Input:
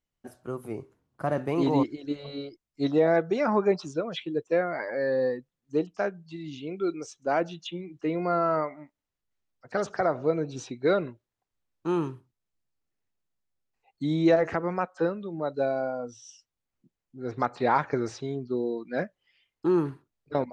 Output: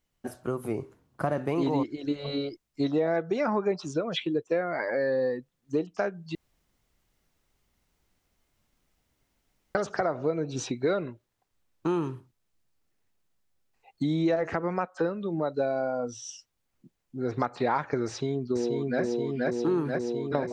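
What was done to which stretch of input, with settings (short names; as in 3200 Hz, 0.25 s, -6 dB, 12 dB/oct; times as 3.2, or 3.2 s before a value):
6.35–9.75 room tone
18.07–19.02 echo throw 0.48 s, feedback 75%, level -1 dB
whole clip: compressor 3:1, threshold -35 dBFS; gain +8 dB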